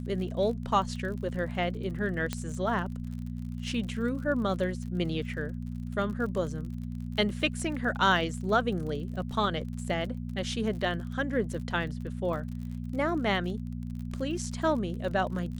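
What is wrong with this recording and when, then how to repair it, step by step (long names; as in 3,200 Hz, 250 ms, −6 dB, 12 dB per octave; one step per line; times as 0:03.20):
surface crackle 45 per second −38 dBFS
mains hum 60 Hz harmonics 4 −36 dBFS
0:02.33: click −16 dBFS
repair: click removal
hum removal 60 Hz, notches 4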